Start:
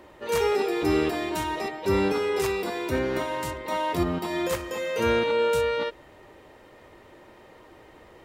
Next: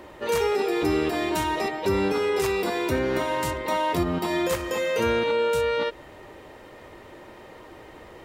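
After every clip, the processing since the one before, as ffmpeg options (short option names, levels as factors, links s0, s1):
-af "acompressor=threshold=0.0398:ratio=2.5,volume=1.88"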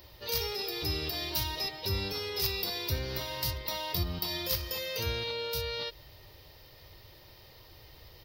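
-af "firequalizer=gain_entry='entry(110,0);entry(230,-19);entry(490,-14);entry(1400,-15);entry(4900,10);entry(7400,-14);entry(15000,14)':delay=0.05:min_phase=1"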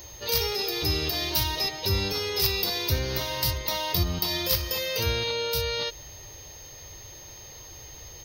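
-af "aeval=exprs='val(0)+0.00282*sin(2*PI*6400*n/s)':c=same,volume=2.11"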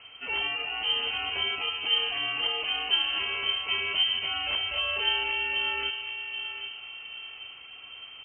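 -filter_complex "[0:a]asplit=2[s0][s1];[s1]adelay=780,lowpass=f=1100:p=1,volume=0.501,asplit=2[s2][s3];[s3]adelay=780,lowpass=f=1100:p=1,volume=0.49,asplit=2[s4][s5];[s5]adelay=780,lowpass=f=1100:p=1,volume=0.49,asplit=2[s6][s7];[s7]adelay=780,lowpass=f=1100:p=1,volume=0.49,asplit=2[s8][s9];[s9]adelay=780,lowpass=f=1100:p=1,volume=0.49,asplit=2[s10][s11];[s11]adelay=780,lowpass=f=1100:p=1,volume=0.49[s12];[s0][s2][s4][s6][s8][s10][s12]amix=inputs=7:normalize=0,lowpass=f=2700:t=q:w=0.5098,lowpass=f=2700:t=q:w=0.6013,lowpass=f=2700:t=q:w=0.9,lowpass=f=2700:t=q:w=2.563,afreqshift=-3200"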